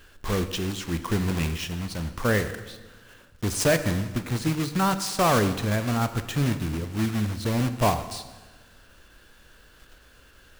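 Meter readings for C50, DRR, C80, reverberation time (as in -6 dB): 11.5 dB, 10.0 dB, 13.0 dB, 1.3 s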